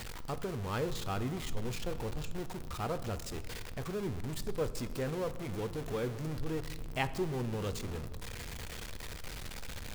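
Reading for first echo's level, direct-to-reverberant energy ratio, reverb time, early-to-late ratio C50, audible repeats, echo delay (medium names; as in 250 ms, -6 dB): no echo, 11.5 dB, 1.5 s, 14.5 dB, no echo, no echo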